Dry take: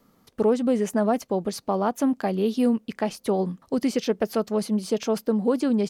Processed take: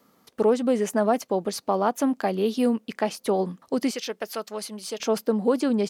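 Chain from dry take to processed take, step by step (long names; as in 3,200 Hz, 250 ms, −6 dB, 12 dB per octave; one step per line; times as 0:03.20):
high-pass filter 310 Hz 6 dB per octave, from 0:03.91 1,500 Hz, from 0:05.00 280 Hz
level +2.5 dB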